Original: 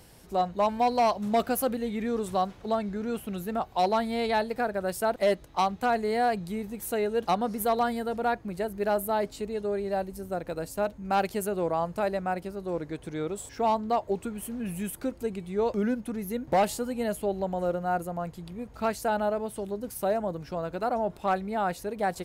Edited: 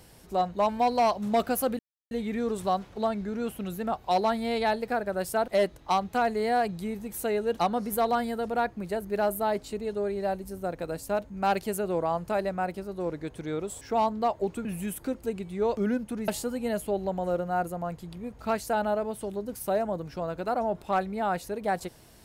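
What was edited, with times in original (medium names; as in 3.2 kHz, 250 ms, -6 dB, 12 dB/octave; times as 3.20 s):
1.79 s: insert silence 0.32 s
14.33–14.62 s: delete
16.25–16.63 s: delete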